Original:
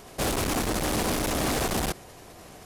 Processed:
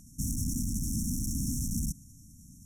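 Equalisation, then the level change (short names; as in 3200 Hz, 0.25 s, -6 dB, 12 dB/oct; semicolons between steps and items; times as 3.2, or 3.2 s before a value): brick-wall FIR band-stop 290–5400 Hz; bell 400 Hz -4.5 dB 1.2 oct; high shelf 8600 Hz -7 dB; 0.0 dB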